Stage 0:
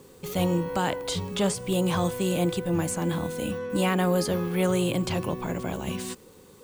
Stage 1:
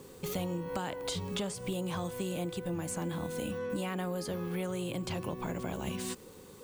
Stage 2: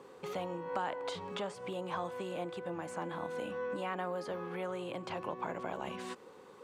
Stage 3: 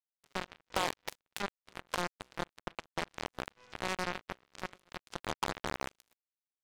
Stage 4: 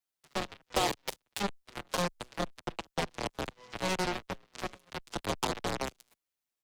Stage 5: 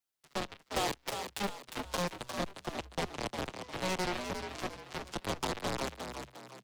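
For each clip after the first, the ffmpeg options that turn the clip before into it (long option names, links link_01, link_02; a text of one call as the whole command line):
ffmpeg -i in.wav -af "acompressor=threshold=-32dB:ratio=10" out.wav
ffmpeg -i in.wav -af "bandpass=frequency=990:width_type=q:width=0.87:csg=0,volume=3.5dB" out.wav
ffmpeg -i in.wav -af "acrusher=bits=4:mix=0:aa=0.5,aeval=exprs='0.075*(cos(1*acos(clip(val(0)/0.075,-1,1)))-cos(1*PI/2))+0.015*(cos(7*acos(clip(val(0)/0.075,-1,1)))-cos(7*PI/2))':channel_layout=same,volume=4dB" out.wav
ffmpeg -i in.wav -filter_complex "[0:a]acrossover=split=250|1000|2600[link_01][link_02][link_03][link_04];[link_03]alimiter=level_in=13dB:limit=-24dB:level=0:latency=1:release=337,volume=-13dB[link_05];[link_01][link_02][link_05][link_04]amix=inputs=4:normalize=0,asplit=2[link_06][link_07];[link_07]adelay=6.8,afreqshift=-2.1[link_08];[link_06][link_08]amix=inputs=2:normalize=1,volume=9dB" out.wav
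ffmpeg -i in.wav -filter_complex "[0:a]asoftclip=type=tanh:threshold=-26dB,asplit=2[link_01][link_02];[link_02]asplit=4[link_03][link_04][link_05][link_06];[link_03]adelay=354,afreqshift=62,volume=-7dB[link_07];[link_04]adelay=708,afreqshift=124,volume=-15.4dB[link_08];[link_05]adelay=1062,afreqshift=186,volume=-23.8dB[link_09];[link_06]adelay=1416,afreqshift=248,volume=-32.2dB[link_10];[link_07][link_08][link_09][link_10]amix=inputs=4:normalize=0[link_11];[link_01][link_11]amix=inputs=2:normalize=0" out.wav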